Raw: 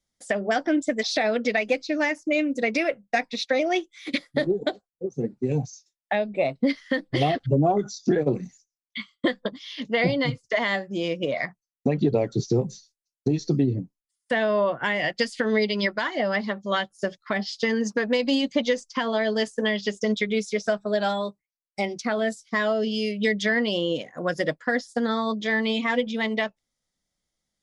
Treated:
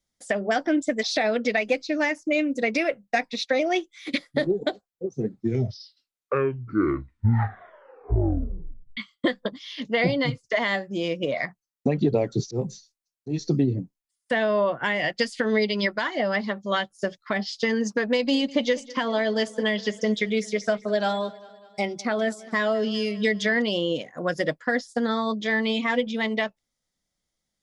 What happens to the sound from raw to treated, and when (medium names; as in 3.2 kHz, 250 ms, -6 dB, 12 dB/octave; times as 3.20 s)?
5.05 s: tape stop 3.92 s
12.46–13.48 s: slow attack 110 ms
18.14–23.62 s: feedback delay 201 ms, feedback 57%, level -20.5 dB